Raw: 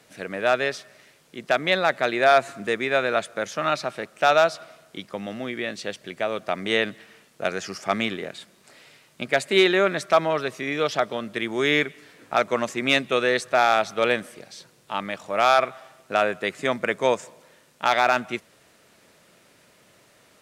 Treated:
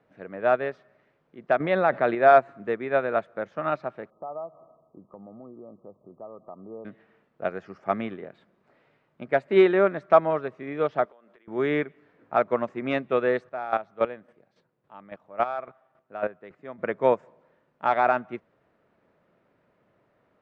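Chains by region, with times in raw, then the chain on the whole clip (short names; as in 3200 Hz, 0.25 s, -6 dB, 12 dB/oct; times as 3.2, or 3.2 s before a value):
1.6–2.15 bell 7300 Hz -14.5 dB 0.24 oct + fast leveller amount 50%
4.1–6.85 brick-wall FIR low-pass 1300 Hz + compressor 2:1, threshold -37 dBFS
11.05–11.48 HPF 460 Hz + compressor 16:1, threshold -42 dBFS
13.45–16.82 HPF 51 Hz + chopper 3.6 Hz, depth 65%, duty 15%
whole clip: LPF 1300 Hz 12 dB/oct; upward expander 1.5:1, over -35 dBFS; gain +3 dB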